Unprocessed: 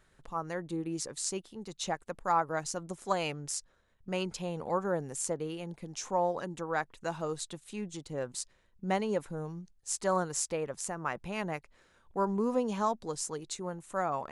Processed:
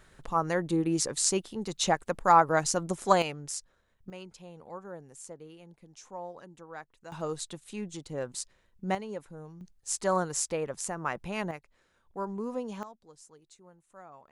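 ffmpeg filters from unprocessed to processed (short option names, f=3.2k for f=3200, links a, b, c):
-af "asetnsamples=n=441:p=0,asendcmd='3.22 volume volume -0.5dB;4.1 volume volume -11.5dB;7.12 volume volume 1dB;8.95 volume volume -7dB;9.61 volume volume 2dB;11.51 volume volume -5dB;12.83 volume volume -18dB',volume=8dB"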